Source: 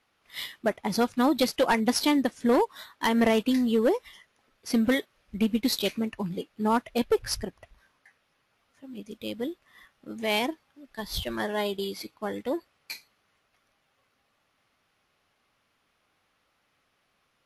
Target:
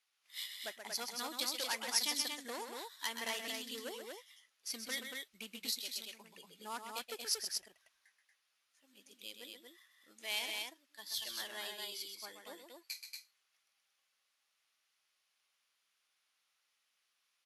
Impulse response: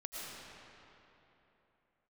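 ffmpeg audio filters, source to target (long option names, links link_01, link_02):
-filter_complex "[0:a]aecho=1:1:128.3|233.2:0.447|0.631,asettb=1/sr,asplit=3[link_01][link_02][link_03];[link_01]atrim=end=5.704[link_04];[link_02]atrim=start=5.7:end=6.47,asetpts=PTS-STARTPTS,afade=type=in:duration=0.004:curve=qsin,afade=type=out:start_time=0.766:duration=0.004:curve=qsin,acompressor=threshold=-31dB:ratio=2.5[link_05];[link_03]atrim=start=6.466[link_06];[link_04][link_05]acrossfade=duration=0.004:curve1=hsin:curve2=qsin[link_07];[link_07][link_06]acrossfade=duration=0.004:curve1=qsin:curve2=hsin,bandpass=frequency=7900:width_type=q:width=0.66:csg=0,volume=-2.5dB"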